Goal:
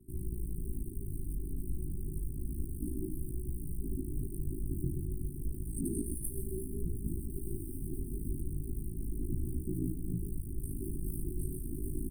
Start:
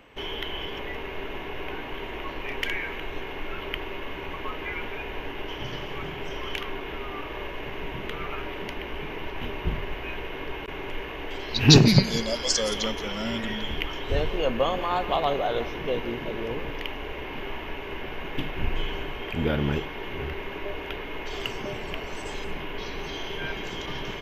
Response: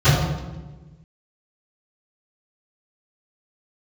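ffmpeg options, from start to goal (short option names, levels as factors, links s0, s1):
-filter_complex "[0:a]asetrate=88200,aresample=44100,acrossover=split=120|820|1800|4900[s0][s1][s2][s3][s4];[s0]acompressor=threshold=0.02:ratio=4[s5];[s1]acompressor=threshold=0.02:ratio=4[s6];[s2]acompressor=threshold=0.0251:ratio=4[s7];[s3]acompressor=threshold=0.01:ratio=4[s8];[s4]acompressor=threshold=0.00891:ratio=4[s9];[s5][s6][s7][s8][s9]amix=inputs=5:normalize=0,aeval=exprs='val(0)*sin(2*PI*27*n/s)':c=same,aecho=1:1:128|256|384:0.282|0.0874|0.0271,flanger=delay=16:depth=6.2:speed=0.31,bandreject=f=104.2:t=h:w=4,bandreject=f=208.4:t=h:w=4,bandreject=f=312.6:t=h:w=4,bandreject=f=416.8:t=h:w=4,bandreject=f=521:t=h:w=4,bandreject=f=625.2:t=h:w=4,bandreject=f=729.4:t=h:w=4,bandreject=f=833.6:t=h:w=4,bandreject=f=937.8:t=h:w=4,acrossover=split=360|1100|1800[s10][s11][s12][s13];[s12]acrusher=bits=7:mix=0:aa=0.000001[s14];[s10][s11][s14][s13]amix=inputs=4:normalize=0,alimiter=level_in=1.68:limit=0.0631:level=0:latency=1:release=41,volume=0.596,afftfilt=real='re*(1-between(b*sr/4096,400,8300))':imag='im*(1-between(b*sr/4096,400,8300))':win_size=4096:overlap=0.75,volume=2.66"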